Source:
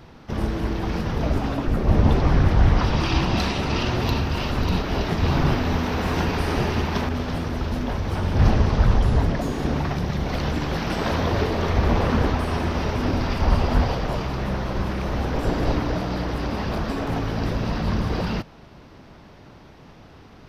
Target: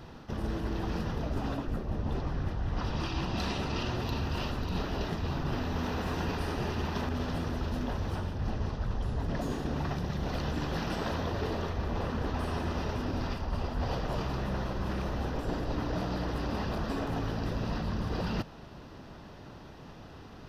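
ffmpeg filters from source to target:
ffmpeg -i in.wav -af "bandreject=frequency=2200:width=8.1,areverse,acompressor=threshold=-27dB:ratio=12,areverse,volume=-1.5dB" out.wav

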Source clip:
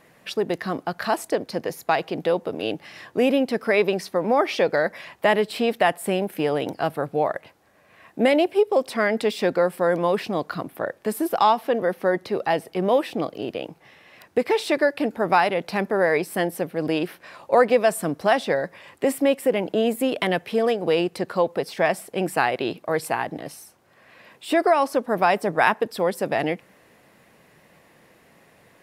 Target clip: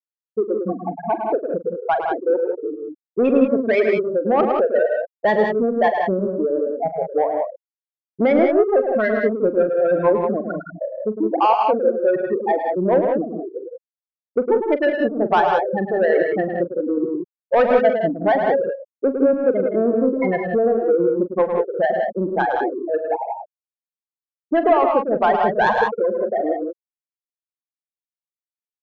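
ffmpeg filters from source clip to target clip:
ffmpeg -i in.wav -af "afftfilt=real='re*gte(hypot(re,im),0.316)':imag='im*gte(hypot(re,im),0.316)':win_size=1024:overlap=0.75,asoftclip=type=tanh:threshold=-13dB,aecho=1:1:42|106|114|162|185:0.224|0.422|0.178|0.422|0.473,volume=4dB" out.wav

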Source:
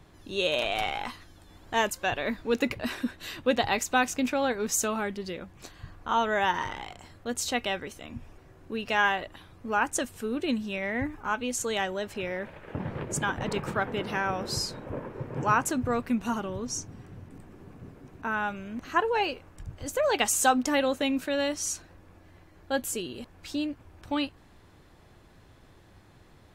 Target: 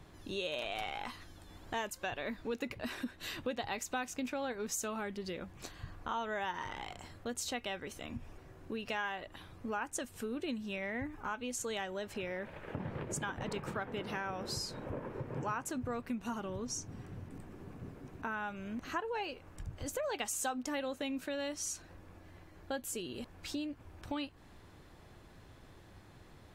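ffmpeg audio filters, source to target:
ffmpeg -i in.wav -af "acompressor=threshold=-37dB:ratio=3,volume=-1dB" out.wav

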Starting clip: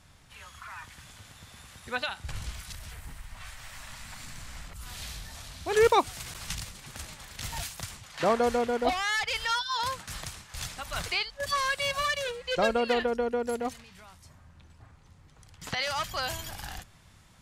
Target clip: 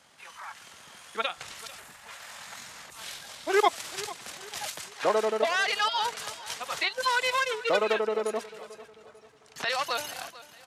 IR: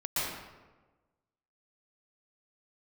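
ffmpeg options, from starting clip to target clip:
-filter_complex "[0:a]asetrate=39999,aresample=44100,acrossover=split=430|3000[link_01][link_02][link_03];[link_01]acompressor=threshold=-36dB:ratio=3[link_04];[link_04][link_02][link_03]amix=inputs=3:normalize=0,highpass=290,atempo=1.8,aecho=1:1:444|888|1332:0.133|0.0547|0.0224,volume=3dB"

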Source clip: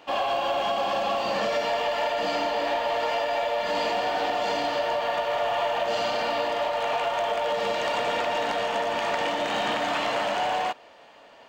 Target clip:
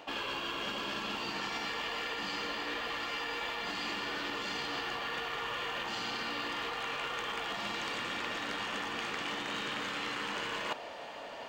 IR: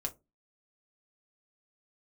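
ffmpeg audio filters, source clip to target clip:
-af "afftfilt=real='re*lt(hypot(re,im),0.141)':imag='im*lt(hypot(re,im),0.141)':win_size=1024:overlap=0.75,areverse,acompressor=threshold=-40dB:ratio=16,areverse,volume=6.5dB"

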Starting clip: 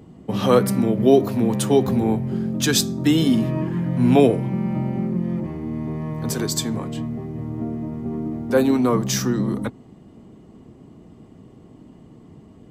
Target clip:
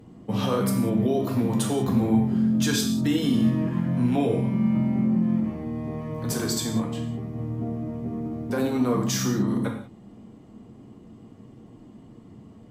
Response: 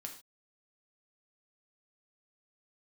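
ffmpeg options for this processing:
-filter_complex "[0:a]alimiter=limit=-13.5dB:level=0:latency=1:release=39[link_01];[1:a]atrim=start_sample=2205,asetrate=33516,aresample=44100[link_02];[link_01][link_02]afir=irnorm=-1:irlink=0"

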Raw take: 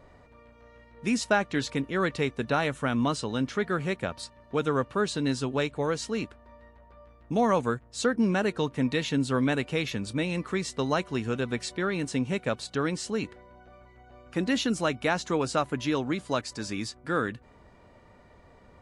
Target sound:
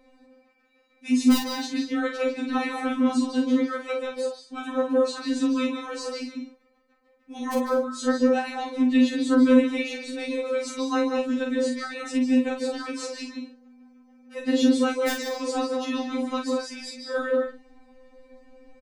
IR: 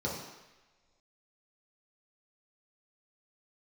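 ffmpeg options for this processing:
-filter_complex "[0:a]asubboost=boost=4.5:cutoff=65,aeval=exprs='(mod(4.47*val(0)+1,2)-1)/4.47':channel_layout=same,asplit=2[link_01][link_02];[link_02]adelay=44,volume=-5.5dB[link_03];[link_01][link_03]amix=inputs=2:normalize=0,asplit=2[link_04][link_05];[1:a]atrim=start_sample=2205,atrim=end_sample=4410,adelay=148[link_06];[link_05][link_06]afir=irnorm=-1:irlink=0,volume=-8dB[link_07];[link_04][link_07]amix=inputs=2:normalize=0,afftfilt=real='re*3.46*eq(mod(b,12),0)':imag='im*3.46*eq(mod(b,12),0)':win_size=2048:overlap=0.75"

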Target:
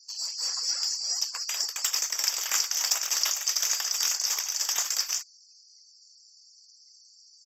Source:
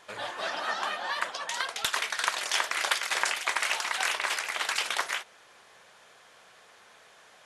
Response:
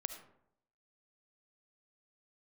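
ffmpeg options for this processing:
-filter_complex "[0:a]afftfilt=real='real(if(lt(b,736),b+184*(1-2*mod(floor(b/184),2)),b),0)':imag='imag(if(lt(b,736),b+184*(1-2*mod(floor(b/184),2)),b),0)':win_size=2048:overlap=0.75,highpass=920,afftfilt=real='re*gte(hypot(re,im),0.00251)':imag='im*gte(hypot(re,im),0.00251)':win_size=1024:overlap=0.75,highshelf=frequency=7300:gain=3,asplit=2[link_01][link_02];[link_02]asoftclip=type=hard:threshold=-22.5dB,volume=-6dB[link_03];[link_01][link_03]amix=inputs=2:normalize=0,aresample=32000,aresample=44100,volume=-2dB"

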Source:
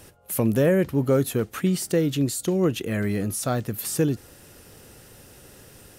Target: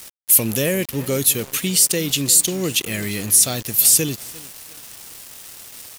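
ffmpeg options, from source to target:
ffmpeg -i in.wav -filter_complex "[0:a]asplit=2[link_01][link_02];[link_02]adelay=350,lowpass=frequency=3900:poles=1,volume=-17dB,asplit=2[link_03][link_04];[link_04]adelay=350,lowpass=frequency=3900:poles=1,volume=0.44,asplit=2[link_05][link_06];[link_06]adelay=350,lowpass=frequency=3900:poles=1,volume=0.44,asplit=2[link_07][link_08];[link_08]adelay=350,lowpass=frequency=3900:poles=1,volume=0.44[link_09];[link_01][link_03][link_05][link_07][link_09]amix=inputs=5:normalize=0,acontrast=31,aexciter=amount=6.3:drive=5.1:freq=2100,aeval=exprs='val(0)*gte(abs(val(0)),0.0668)':channel_layout=same,volume=-7dB" out.wav

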